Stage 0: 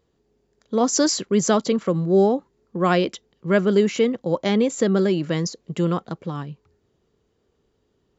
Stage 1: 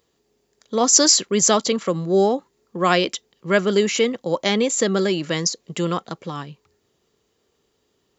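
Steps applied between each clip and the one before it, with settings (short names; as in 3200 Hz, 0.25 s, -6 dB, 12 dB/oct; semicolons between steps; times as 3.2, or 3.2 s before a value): tilt +2.5 dB/oct; notch 1500 Hz, Q 18; gain +3 dB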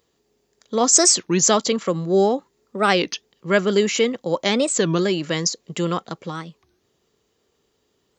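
record warp 33 1/3 rpm, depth 250 cents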